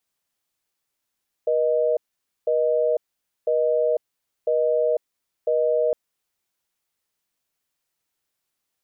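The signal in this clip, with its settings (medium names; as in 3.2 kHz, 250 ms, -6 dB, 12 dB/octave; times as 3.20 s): call progress tone busy tone, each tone -20.5 dBFS 4.46 s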